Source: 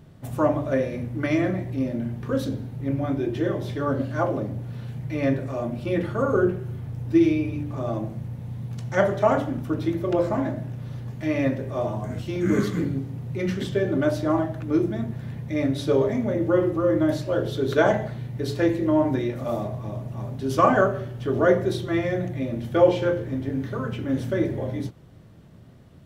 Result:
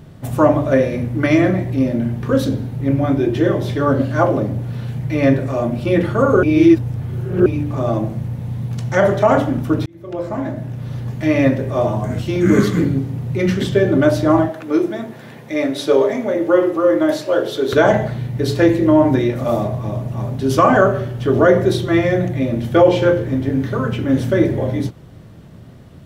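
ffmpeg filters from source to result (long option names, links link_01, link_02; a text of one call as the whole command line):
ffmpeg -i in.wav -filter_complex "[0:a]asettb=1/sr,asplit=3[link_01][link_02][link_03];[link_01]atrim=end=14.494[link_04];[link_02]atrim=start=14.49:end=17.73,asetpts=PTS-STARTPTS,afade=type=in:duration=0.004:curve=qsin,afade=type=out:start_time=3.236:duration=0.004:curve=qsin,highpass=350[link_05];[link_03]atrim=start=17.726[link_06];[link_04][link_05]acrossfade=duration=0.004:curve1=hsin:curve2=qsin[link_07];[link_07][link_06]acrossfade=duration=0.004:curve1=qsin:curve2=hsin,asplit=4[link_08][link_09][link_10][link_11];[link_08]atrim=end=6.432[link_12];[link_09]atrim=start=6.428:end=7.462,asetpts=PTS-STARTPTS,areverse[link_13];[link_10]atrim=start=7.458:end=9.86,asetpts=PTS-STARTPTS,afade=type=out:start_time=2.398:duration=0.004:curve=hsin[link_14];[link_11]atrim=start=9.86,asetpts=PTS-STARTPTS,afade=type=in:duration=1.2[link_15];[link_12][link_13]acrossfade=duration=0.004:curve1=hsin:curve2=hsin[link_16];[link_14][link_15]concat=n=2:v=0:a=1[link_17];[link_16][link_17]acrossfade=duration=0.004:curve1=hsin:curve2=hsin,alimiter=level_in=10dB:limit=-1dB:release=50:level=0:latency=1,volume=-1dB" out.wav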